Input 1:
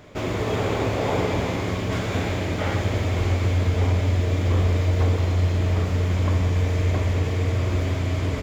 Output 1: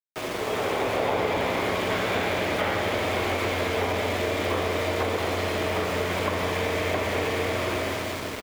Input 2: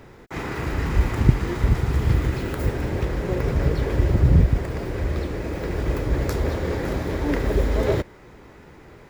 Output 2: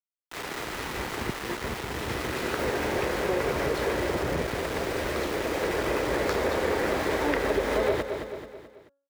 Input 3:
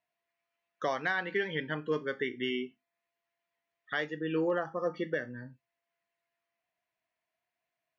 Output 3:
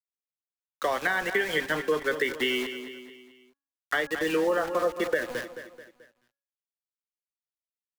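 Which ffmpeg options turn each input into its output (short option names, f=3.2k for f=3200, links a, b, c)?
-filter_complex "[0:a]dynaudnorm=f=250:g=7:m=13dB,acrossover=split=330 4900:gain=0.178 1 0.224[a][b][c];[a][b][c]amix=inputs=3:normalize=0,tremolo=f=130:d=0.182,adynamicequalizer=threshold=0.00708:dfrequency=210:dqfactor=1.8:tfrequency=210:tqfactor=1.8:attack=5:release=100:ratio=0.375:range=3:mode=boostabove:tftype=bell,highpass=f=60:p=1,aeval=exprs='val(0)*gte(abs(val(0)),0.0282)':c=same,bandreject=f=278.8:t=h:w=4,bandreject=f=557.6:t=h:w=4,bandreject=f=836.4:t=h:w=4,bandreject=f=1.1152k:t=h:w=4,bandreject=f=1.394k:t=h:w=4,bandreject=f=1.6728k:t=h:w=4,asplit=2[d][e];[e]aecho=0:1:217|434|651|868:0.211|0.0951|0.0428|0.0193[f];[d][f]amix=inputs=2:normalize=0,acrossover=split=110|370[g][h][i];[g]acompressor=threshold=-37dB:ratio=4[j];[h]acompressor=threshold=-37dB:ratio=4[k];[i]acompressor=threshold=-24dB:ratio=4[l];[j][k][l]amix=inputs=3:normalize=0"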